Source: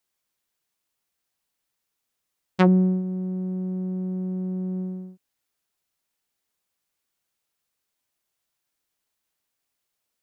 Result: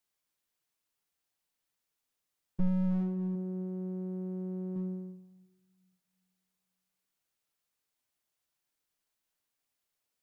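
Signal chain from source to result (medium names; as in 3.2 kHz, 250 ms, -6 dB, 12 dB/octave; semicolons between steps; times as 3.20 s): 3.35–4.76 s: peaking EQ 200 Hz -6.5 dB 0.32 oct; simulated room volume 990 m³, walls mixed, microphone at 0.41 m; slew-rate limiter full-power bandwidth 13 Hz; trim -5 dB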